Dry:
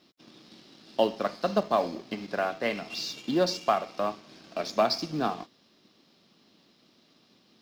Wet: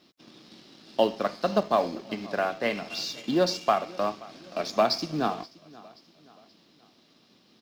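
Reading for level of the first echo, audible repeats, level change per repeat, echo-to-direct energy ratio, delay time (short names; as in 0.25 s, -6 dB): -22.0 dB, 2, -7.0 dB, -21.0 dB, 0.528 s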